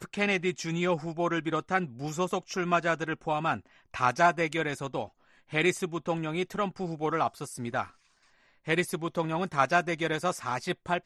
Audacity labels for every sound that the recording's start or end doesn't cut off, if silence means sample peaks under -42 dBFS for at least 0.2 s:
3.940000	5.070000	sound
5.520000	7.880000	sound